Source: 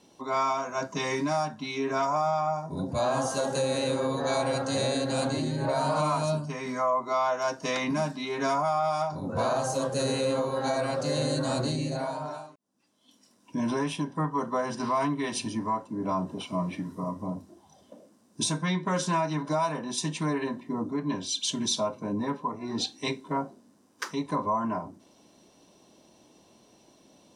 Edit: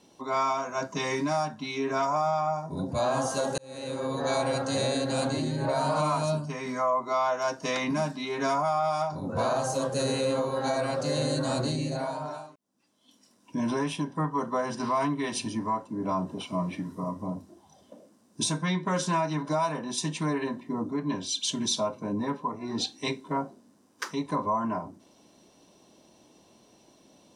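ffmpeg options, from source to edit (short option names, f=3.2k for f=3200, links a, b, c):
-filter_complex "[0:a]asplit=2[a][b];[a]atrim=end=3.58,asetpts=PTS-STARTPTS,afade=t=out:st=3.576:d=0.004:c=hsin[c];[b]atrim=start=3.58,asetpts=PTS-STARTPTS,afade=t=in:d=0.67[d];[c][d]concat=n=2:v=0:a=1"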